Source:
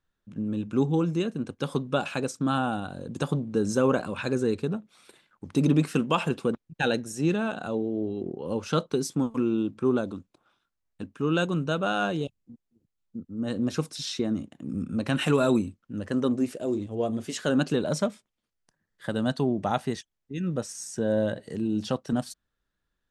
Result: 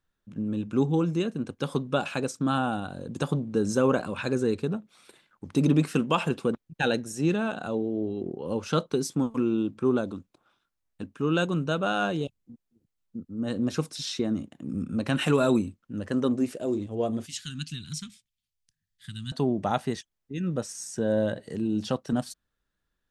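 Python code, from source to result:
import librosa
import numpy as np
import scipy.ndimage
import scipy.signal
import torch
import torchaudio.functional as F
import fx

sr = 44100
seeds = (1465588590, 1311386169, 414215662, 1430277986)

y = fx.cheby1_bandstop(x, sr, low_hz=110.0, high_hz=3100.0, order=2, at=(17.26, 19.32))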